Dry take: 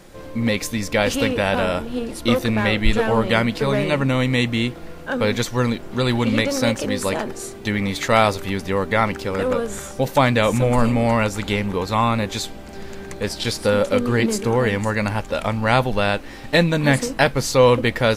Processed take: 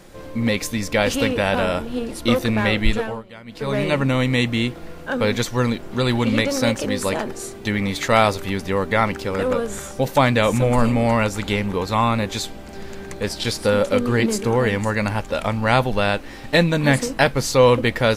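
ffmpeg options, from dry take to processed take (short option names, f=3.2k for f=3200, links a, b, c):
-filter_complex "[0:a]asplit=3[a][b][c];[a]atrim=end=3.23,asetpts=PTS-STARTPTS,afade=t=out:st=2.84:d=0.39:silence=0.0749894[d];[b]atrim=start=3.23:end=3.45,asetpts=PTS-STARTPTS,volume=-22.5dB[e];[c]atrim=start=3.45,asetpts=PTS-STARTPTS,afade=t=in:d=0.39:silence=0.0749894[f];[d][e][f]concat=n=3:v=0:a=1"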